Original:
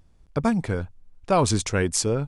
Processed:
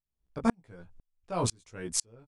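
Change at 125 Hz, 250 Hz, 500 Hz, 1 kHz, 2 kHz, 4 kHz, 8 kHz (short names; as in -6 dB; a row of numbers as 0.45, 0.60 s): -13.0, -8.5, -12.5, -10.0, -13.0, -8.0, -6.5 dB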